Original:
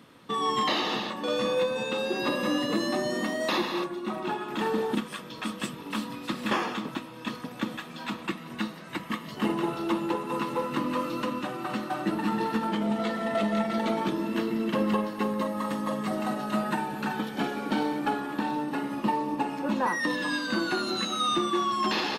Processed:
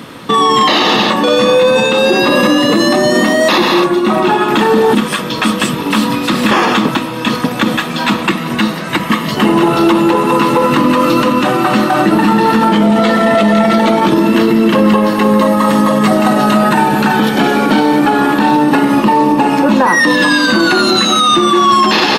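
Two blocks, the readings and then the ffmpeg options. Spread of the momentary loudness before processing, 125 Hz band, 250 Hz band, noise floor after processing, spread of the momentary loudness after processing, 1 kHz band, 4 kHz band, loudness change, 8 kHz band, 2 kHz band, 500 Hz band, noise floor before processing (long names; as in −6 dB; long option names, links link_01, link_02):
8 LU, +19.0 dB, +18.5 dB, −20 dBFS, 6 LU, +18.5 dB, +18.5 dB, +18.5 dB, +19.0 dB, +19.0 dB, +18.5 dB, −43 dBFS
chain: -af "alimiter=level_in=24dB:limit=-1dB:release=50:level=0:latency=1,volume=-1dB"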